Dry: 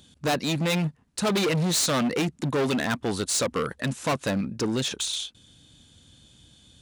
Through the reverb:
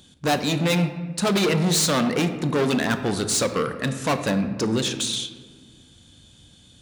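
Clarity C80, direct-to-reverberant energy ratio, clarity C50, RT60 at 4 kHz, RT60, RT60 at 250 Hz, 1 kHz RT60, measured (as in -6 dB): 11.5 dB, 8.0 dB, 10.0 dB, 0.80 s, 1.5 s, 2.2 s, 1.4 s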